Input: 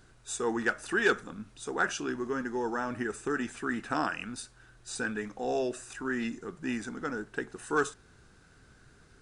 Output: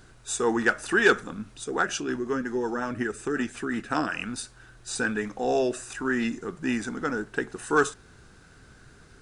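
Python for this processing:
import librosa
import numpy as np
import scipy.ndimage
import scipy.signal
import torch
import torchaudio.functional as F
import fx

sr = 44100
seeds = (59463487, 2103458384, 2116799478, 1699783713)

y = fx.rotary(x, sr, hz=5.5, at=(1.64, 4.15))
y = F.gain(torch.from_numpy(y), 6.0).numpy()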